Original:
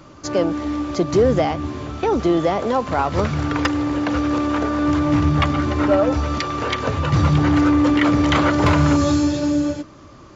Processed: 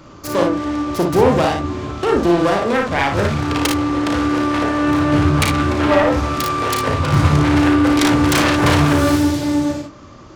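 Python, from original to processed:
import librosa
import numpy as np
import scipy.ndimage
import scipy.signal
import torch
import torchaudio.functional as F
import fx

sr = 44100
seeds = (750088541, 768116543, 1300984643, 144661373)

y = fx.self_delay(x, sr, depth_ms=0.29)
y = fx.room_early_taps(y, sr, ms=(35, 57, 75), db=(-6.0, -4.5, -12.5))
y = F.gain(torch.from_numpy(y), 1.5).numpy()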